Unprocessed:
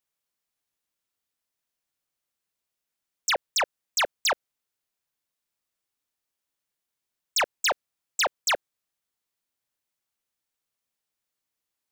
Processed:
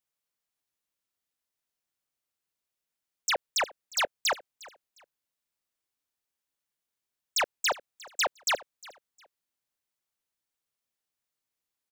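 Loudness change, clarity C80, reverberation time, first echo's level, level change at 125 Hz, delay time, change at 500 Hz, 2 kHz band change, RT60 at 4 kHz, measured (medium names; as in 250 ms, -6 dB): -3.0 dB, no reverb, no reverb, -21.0 dB, no reading, 356 ms, -3.0 dB, -3.0 dB, no reverb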